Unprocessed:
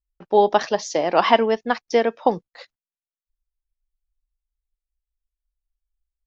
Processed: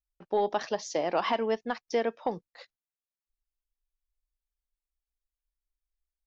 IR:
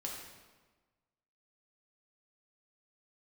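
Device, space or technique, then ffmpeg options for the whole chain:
soft clipper into limiter: -af "asoftclip=type=tanh:threshold=-2.5dB,alimiter=limit=-10dB:level=0:latency=1:release=152,volume=-7.5dB"

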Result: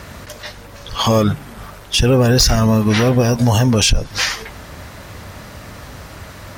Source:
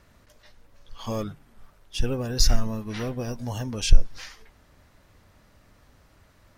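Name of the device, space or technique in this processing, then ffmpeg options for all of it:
mastering chain: -af "highpass=59,equalizer=frequency=290:width_type=o:width=0.77:gain=-2.5,acompressor=threshold=-34dB:ratio=2,asoftclip=type=tanh:threshold=-23dB,asoftclip=type=hard:threshold=-26dB,alimiter=level_in=30dB:limit=-1dB:release=50:level=0:latency=1,volume=-5.5dB"

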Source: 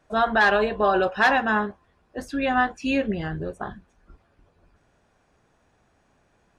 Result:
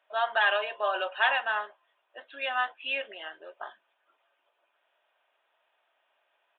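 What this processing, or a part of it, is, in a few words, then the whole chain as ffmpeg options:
musical greeting card: -af "aecho=1:1:3.2:0.34,aresample=8000,aresample=44100,highpass=frequency=580:width=0.5412,highpass=frequency=580:width=1.3066,equalizer=frequency=3000:width_type=o:width=0.57:gain=9,volume=-6.5dB"

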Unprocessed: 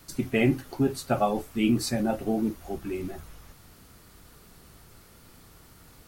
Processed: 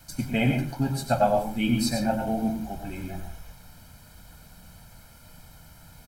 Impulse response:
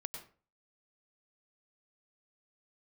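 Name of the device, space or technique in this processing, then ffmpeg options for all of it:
microphone above a desk: -filter_complex "[0:a]aecho=1:1:1.3:0.78[link_01];[1:a]atrim=start_sample=2205[link_02];[link_01][link_02]afir=irnorm=-1:irlink=0,volume=2dB"

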